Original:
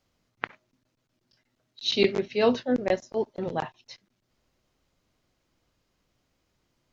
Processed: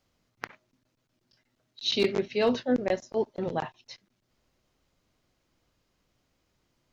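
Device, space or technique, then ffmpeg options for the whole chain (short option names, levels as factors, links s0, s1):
clipper into limiter: -af "asoftclip=type=hard:threshold=0.224,alimiter=limit=0.158:level=0:latency=1"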